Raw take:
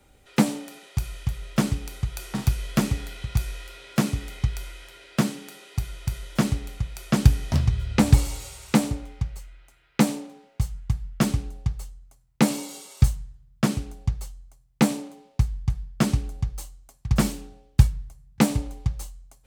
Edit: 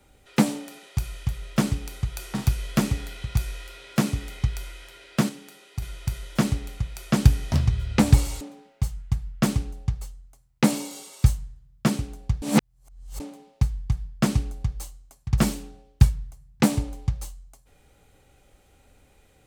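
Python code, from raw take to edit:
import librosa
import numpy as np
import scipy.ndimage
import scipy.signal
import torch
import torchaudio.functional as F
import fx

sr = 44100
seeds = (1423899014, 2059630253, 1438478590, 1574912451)

y = fx.edit(x, sr, fx.clip_gain(start_s=5.29, length_s=0.53, db=-4.5),
    fx.cut(start_s=8.41, length_s=1.78),
    fx.reverse_span(start_s=14.2, length_s=0.78), tone=tone)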